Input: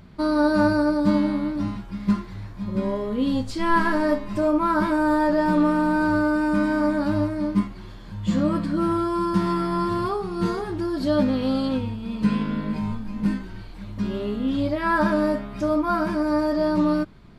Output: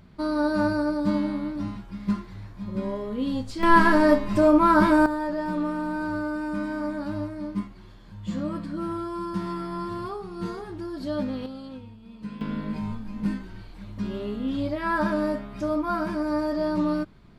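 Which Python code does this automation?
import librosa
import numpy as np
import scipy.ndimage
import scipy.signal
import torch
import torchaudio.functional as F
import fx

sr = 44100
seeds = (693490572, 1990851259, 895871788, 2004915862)

y = fx.gain(x, sr, db=fx.steps((0.0, -4.5), (3.63, 3.5), (5.06, -8.0), (11.46, -15.5), (12.41, -4.0)))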